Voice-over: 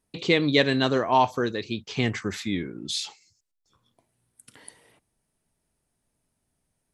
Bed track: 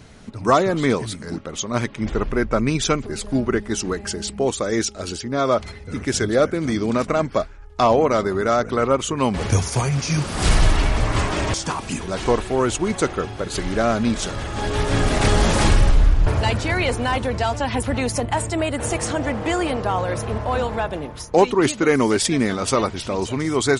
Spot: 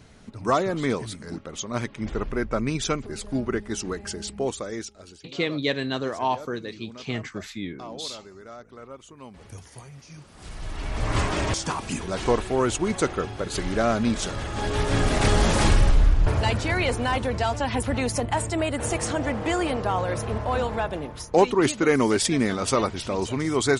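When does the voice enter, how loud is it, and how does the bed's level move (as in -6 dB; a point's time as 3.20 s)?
5.10 s, -5.0 dB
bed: 4.46 s -6 dB
5.37 s -23.5 dB
10.52 s -23.5 dB
11.13 s -3 dB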